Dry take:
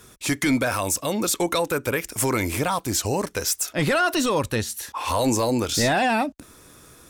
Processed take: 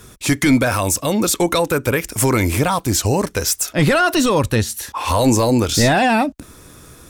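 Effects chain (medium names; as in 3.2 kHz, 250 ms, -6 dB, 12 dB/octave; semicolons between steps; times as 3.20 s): bass shelf 190 Hz +7 dB; trim +5 dB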